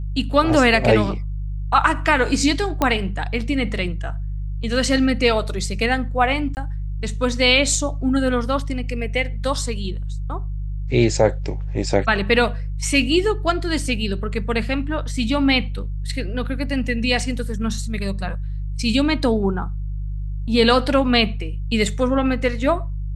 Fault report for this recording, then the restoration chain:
mains hum 50 Hz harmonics 3 −26 dBFS
0:02.82: click −5 dBFS
0:06.55–0:06.57: drop-out 19 ms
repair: click removal
hum removal 50 Hz, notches 3
repair the gap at 0:06.55, 19 ms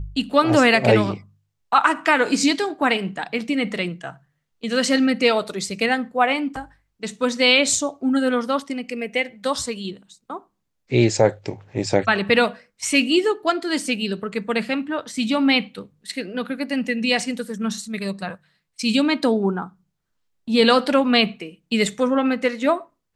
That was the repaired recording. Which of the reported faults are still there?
none of them is left

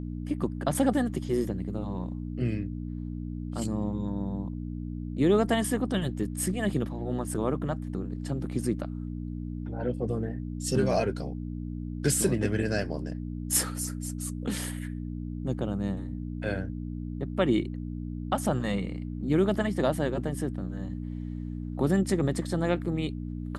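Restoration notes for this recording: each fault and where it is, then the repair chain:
mains hum 60 Hz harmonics 5 −35 dBFS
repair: hum removal 60 Hz, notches 5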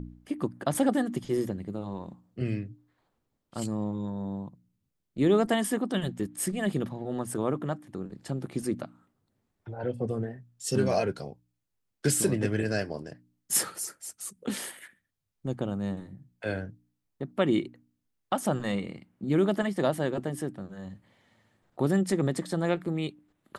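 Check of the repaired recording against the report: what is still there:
none of them is left

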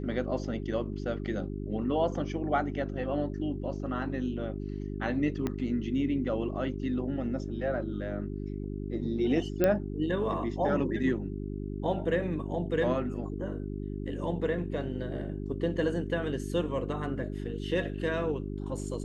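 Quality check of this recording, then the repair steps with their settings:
mains hum 50 Hz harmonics 8 −36 dBFS
0:05.47: click −18 dBFS
0:09.64: click −13 dBFS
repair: click removal
hum removal 50 Hz, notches 8

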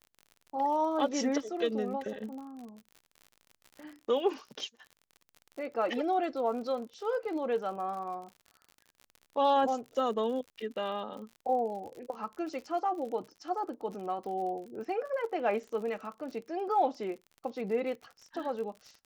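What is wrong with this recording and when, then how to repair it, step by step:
surface crackle 54 per second −41 dBFS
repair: click removal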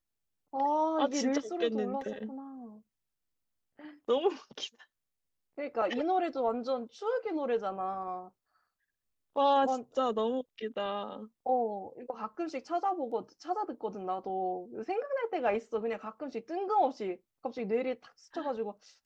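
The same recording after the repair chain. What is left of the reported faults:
none of them is left

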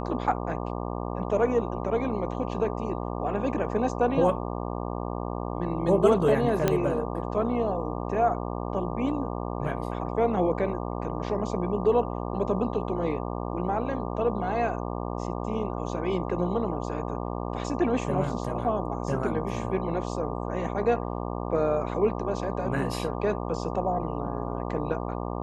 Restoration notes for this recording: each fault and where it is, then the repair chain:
mains buzz 60 Hz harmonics 20 −32 dBFS
0:06.68: click −9 dBFS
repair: click removal
hum removal 60 Hz, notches 20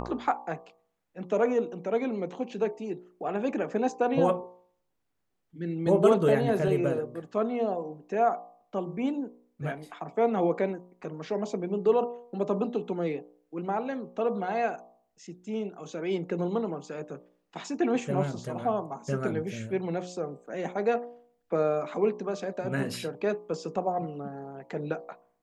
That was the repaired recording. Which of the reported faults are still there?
none of them is left

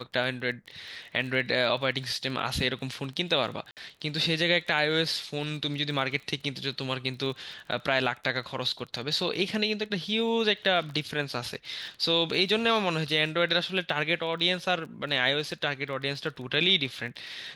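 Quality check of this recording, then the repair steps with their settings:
surface crackle 22 per second −37 dBFS
0:03.71–0:03.77: drop-out 58 ms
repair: click removal
repair the gap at 0:03.71, 58 ms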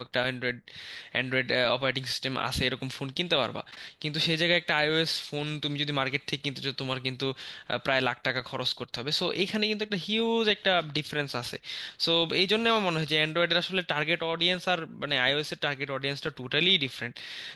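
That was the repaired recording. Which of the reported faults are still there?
none of them is left

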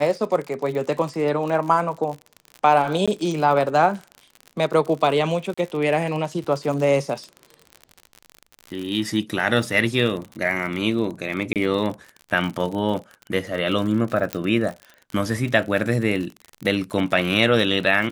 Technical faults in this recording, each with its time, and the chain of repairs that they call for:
surface crackle 51 per second −28 dBFS
0:03.06–0:03.08: drop-out 16 ms
0:05.54–0:05.58: drop-out 35 ms
0:11.53–0:11.56: drop-out 28 ms
0:14.33: click −8 dBFS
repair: click removal
repair the gap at 0:03.06, 16 ms
repair the gap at 0:05.54, 35 ms
repair the gap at 0:11.53, 28 ms

